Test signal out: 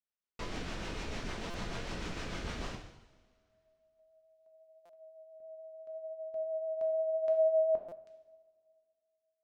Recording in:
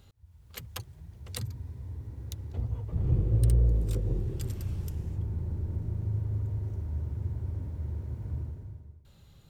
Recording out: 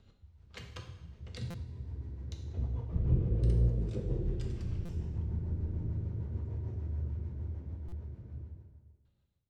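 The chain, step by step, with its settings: ending faded out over 2.69 s; bell 6000 Hz +2 dB 0.45 oct; notches 50/100/150 Hz; rotary speaker horn 6.7 Hz; air absorption 130 m; two-slope reverb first 0.8 s, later 2.2 s, from -17 dB, DRR 2 dB; stuck buffer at 1.5/4.85/7.88, samples 256, times 6; gain -1 dB

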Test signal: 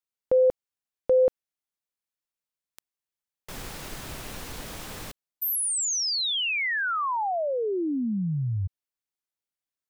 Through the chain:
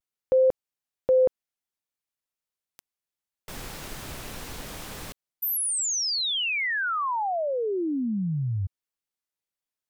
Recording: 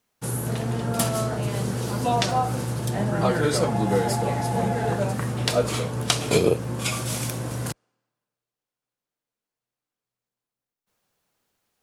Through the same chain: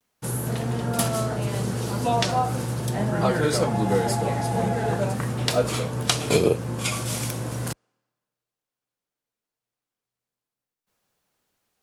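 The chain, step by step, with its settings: vibrato 0.39 Hz 28 cents

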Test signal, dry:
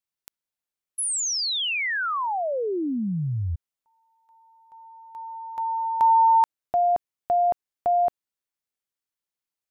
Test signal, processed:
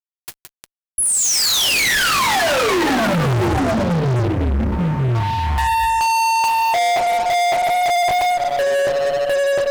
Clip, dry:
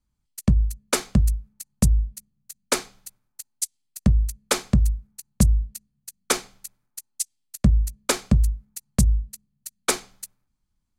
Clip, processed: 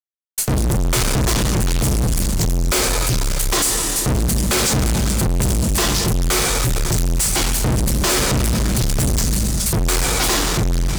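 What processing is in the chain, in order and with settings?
echoes that change speed 98 ms, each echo -4 st, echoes 2, each echo -6 dB; two-slope reverb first 0.22 s, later 2.8 s, from -18 dB, DRR -3 dB; fuzz box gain 36 dB, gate -45 dBFS; gain -2.5 dB

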